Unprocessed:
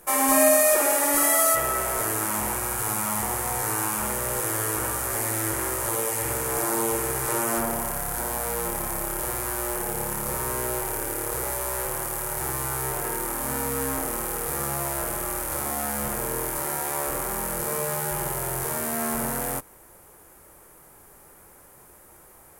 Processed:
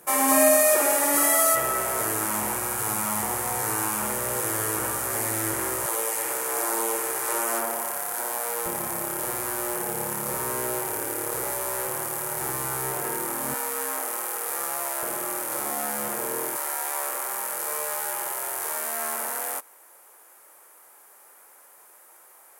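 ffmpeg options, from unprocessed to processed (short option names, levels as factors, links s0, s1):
-af "asetnsamples=n=441:p=0,asendcmd='5.86 highpass f 430;8.66 highpass f 140;13.54 highpass f 550;15.03 highpass f 250;16.56 highpass f 650',highpass=110"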